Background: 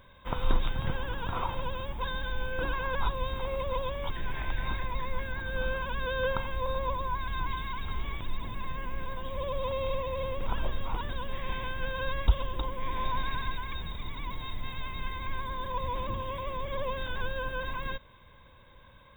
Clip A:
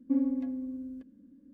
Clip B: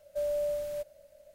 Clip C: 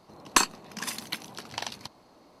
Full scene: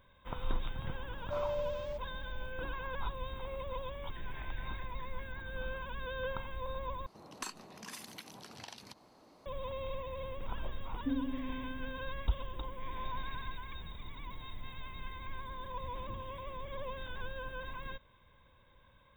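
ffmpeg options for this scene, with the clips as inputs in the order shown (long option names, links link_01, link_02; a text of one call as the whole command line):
ffmpeg -i bed.wav -i cue0.wav -i cue1.wav -i cue2.wav -filter_complex "[0:a]volume=-8.5dB[link_01];[2:a]lowpass=frequency=5900:width=0.5412,lowpass=frequency=5900:width=1.3066[link_02];[3:a]acompressor=threshold=-40dB:ratio=2:attack=0.3:release=60:knee=1:detection=rms[link_03];[link_01]asplit=2[link_04][link_05];[link_04]atrim=end=7.064[link_06];[link_03]atrim=end=2.4,asetpts=PTS-STARTPTS,volume=-4.5dB[link_07];[link_05]atrim=start=9.456[link_08];[link_02]atrim=end=1.34,asetpts=PTS-STARTPTS,volume=-5.5dB,afade=type=in:duration=0.004:curve=hsin,afade=type=out:start_time=1.336:duration=0.004:curve=hsin,adelay=1150[link_09];[1:a]atrim=end=1.53,asetpts=PTS-STARTPTS,volume=-7.5dB,afade=type=in:duration=0.004:curve=hsin,afade=type=out:start_time=1.526:duration=0.004:curve=hsin,adelay=10960[link_10];[link_06][link_07]acrossfade=duration=0.004:curve1=hsin:curve2=hsin[link_11];[link_11][link_08]acrossfade=duration=0.004:curve1=hsin:curve2=hsin[link_12];[link_12][link_09][link_10]amix=inputs=3:normalize=0" out.wav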